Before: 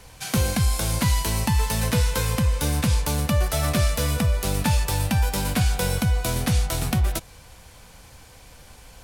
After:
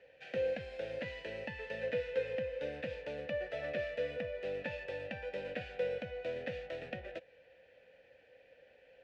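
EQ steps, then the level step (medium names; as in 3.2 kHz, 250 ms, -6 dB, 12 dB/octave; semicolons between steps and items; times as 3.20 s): vowel filter e; low-pass 3.2 kHz 12 dB/octave; 0.0 dB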